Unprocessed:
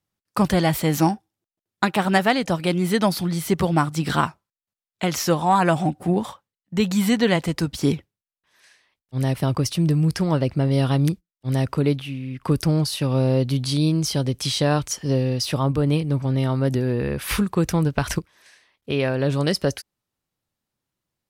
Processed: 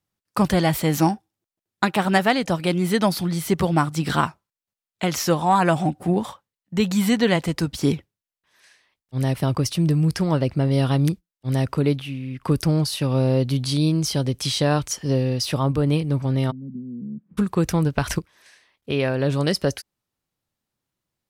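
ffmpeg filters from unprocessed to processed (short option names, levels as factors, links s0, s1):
-filter_complex "[0:a]asplit=3[s0][s1][s2];[s0]afade=t=out:st=16.5:d=0.02[s3];[s1]asuperpass=centerf=200:order=4:qfactor=3,afade=t=in:st=16.5:d=0.02,afade=t=out:st=17.37:d=0.02[s4];[s2]afade=t=in:st=17.37:d=0.02[s5];[s3][s4][s5]amix=inputs=3:normalize=0"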